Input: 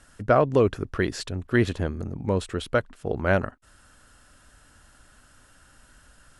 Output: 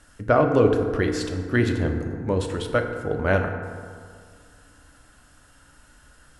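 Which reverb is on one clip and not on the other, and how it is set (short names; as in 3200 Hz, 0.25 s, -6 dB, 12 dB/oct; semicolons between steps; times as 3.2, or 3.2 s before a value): FDN reverb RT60 2.1 s, low-frequency decay 1×, high-frequency decay 0.4×, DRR 3.5 dB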